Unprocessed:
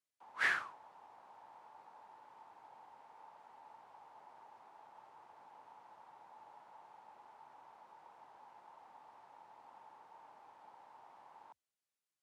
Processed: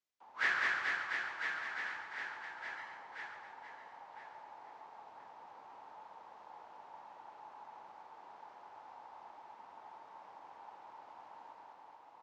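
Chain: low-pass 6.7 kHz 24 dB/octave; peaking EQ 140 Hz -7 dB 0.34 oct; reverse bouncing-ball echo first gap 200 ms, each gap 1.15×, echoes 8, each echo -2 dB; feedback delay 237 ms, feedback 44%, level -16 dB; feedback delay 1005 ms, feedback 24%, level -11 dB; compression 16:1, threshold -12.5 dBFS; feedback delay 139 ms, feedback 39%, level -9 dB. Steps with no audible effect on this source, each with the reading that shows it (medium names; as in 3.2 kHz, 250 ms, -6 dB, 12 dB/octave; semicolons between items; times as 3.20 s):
compression, threshold -12.5 dBFS: peak at its input -20.5 dBFS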